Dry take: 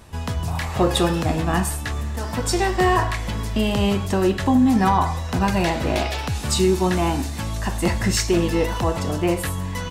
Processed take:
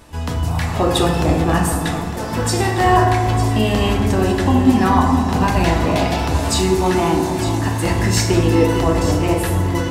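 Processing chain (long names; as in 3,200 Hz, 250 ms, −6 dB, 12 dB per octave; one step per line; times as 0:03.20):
mains-hum notches 50/100/150/200 Hz
on a send: delay that swaps between a low-pass and a high-pass 452 ms, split 950 Hz, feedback 66%, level −7.5 dB
on the sum: feedback delay network reverb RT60 1.7 s, low-frequency decay 1.35×, high-frequency decay 0.4×, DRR 2 dB
level +1.5 dB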